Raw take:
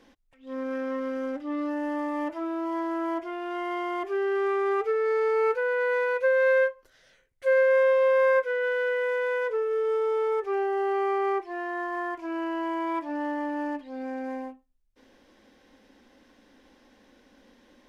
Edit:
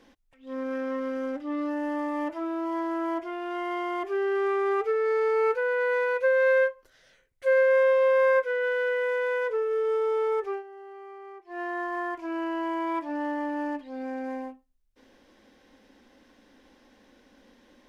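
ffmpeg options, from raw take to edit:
-filter_complex "[0:a]asplit=3[s0][s1][s2];[s0]atrim=end=10.63,asetpts=PTS-STARTPTS,afade=t=out:st=10.46:d=0.17:silence=0.125893[s3];[s1]atrim=start=10.63:end=11.44,asetpts=PTS-STARTPTS,volume=0.126[s4];[s2]atrim=start=11.44,asetpts=PTS-STARTPTS,afade=t=in:d=0.17:silence=0.125893[s5];[s3][s4][s5]concat=n=3:v=0:a=1"

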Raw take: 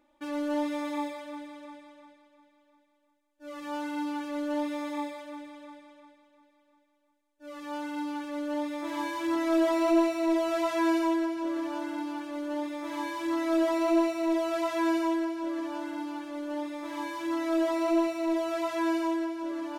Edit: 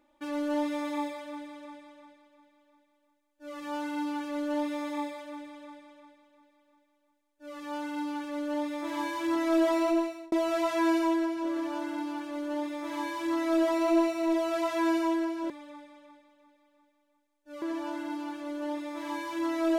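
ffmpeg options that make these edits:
-filter_complex "[0:a]asplit=4[s0][s1][s2][s3];[s0]atrim=end=10.32,asetpts=PTS-STARTPTS,afade=t=out:st=9.77:d=0.55[s4];[s1]atrim=start=10.32:end=15.502,asetpts=PTS-STARTPTS,afade=t=in:d=0.004:c=hsin[s5];[s2]atrim=start=5.438:end=7.562[s6];[s3]atrim=start=15.498[s7];[s4][s5]concat=n=2:v=0:a=1[s8];[s8][s6]acrossfade=d=0.004:c1=hsin:c2=hsin[s9];[s9][s7]acrossfade=d=0.004:c1=hsin:c2=hsin"

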